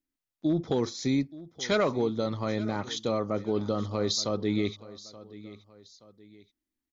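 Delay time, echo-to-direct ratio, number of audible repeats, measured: 0.876 s, -17.5 dB, 2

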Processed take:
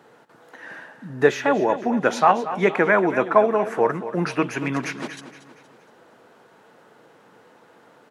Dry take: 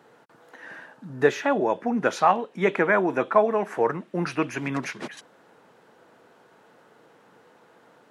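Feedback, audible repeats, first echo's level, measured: 44%, 4, -13.0 dB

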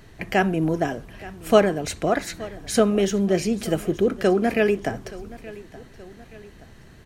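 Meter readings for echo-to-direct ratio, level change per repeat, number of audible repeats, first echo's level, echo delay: -18.0 dB, -6.0 dB, 2, -19.0 dB, 0.874 s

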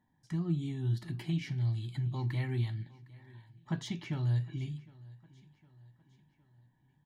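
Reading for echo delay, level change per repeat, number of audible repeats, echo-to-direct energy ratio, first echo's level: 0.759 s, -6.0 dB, 3, -21.0 dB, -22.0 dB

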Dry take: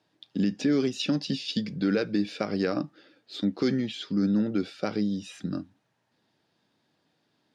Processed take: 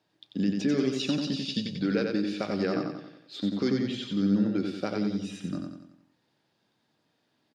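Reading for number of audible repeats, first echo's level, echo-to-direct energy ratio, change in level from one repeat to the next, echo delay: 5, -4.0 dB, -3.0 dB, -6.5 dB, 91 ms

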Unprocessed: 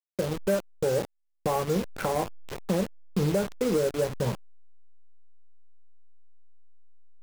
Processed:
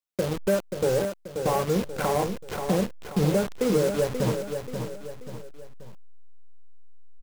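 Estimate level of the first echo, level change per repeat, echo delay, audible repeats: -7.0 dB, -7.5 dB, 0.533 s, 3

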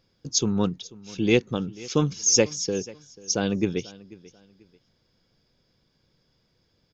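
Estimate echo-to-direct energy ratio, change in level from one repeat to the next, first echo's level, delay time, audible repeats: -20.5 dB, -10.5 dB, -21.0 dB, 0.489 s, 2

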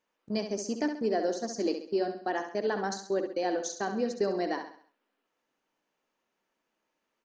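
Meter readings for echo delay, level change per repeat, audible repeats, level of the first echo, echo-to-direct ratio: 67 ms, -7.5 dB, 4, -8.0 dB, -7.0 dB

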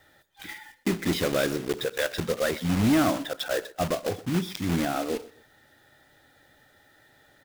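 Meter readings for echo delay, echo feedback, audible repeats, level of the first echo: 0.126 s, 29%, 2, -20.0 dB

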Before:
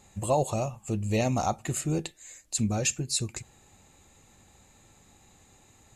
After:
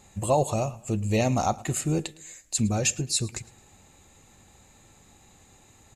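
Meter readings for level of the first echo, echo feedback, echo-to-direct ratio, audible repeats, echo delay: -21.5 dB, 40%, -21.0 dB, 2, 0.109 s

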